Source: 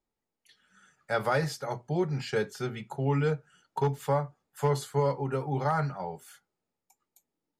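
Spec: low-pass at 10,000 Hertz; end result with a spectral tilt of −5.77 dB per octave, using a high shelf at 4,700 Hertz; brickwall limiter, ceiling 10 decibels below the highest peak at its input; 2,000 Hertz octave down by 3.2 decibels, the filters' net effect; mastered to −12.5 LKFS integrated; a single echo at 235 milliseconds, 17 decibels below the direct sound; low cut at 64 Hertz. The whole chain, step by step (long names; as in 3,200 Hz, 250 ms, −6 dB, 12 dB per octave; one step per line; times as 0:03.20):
high-pass filter 64 Hz
low-pass filter 10,000 Hz
parametric band 2,000 Hz −5.5 dB
high-shelf EQ 4,700 Hz +5 dB
brickwall limiter −24.5 dBFS
single-tap delay 235 ms −17 dB
level +22.5 dB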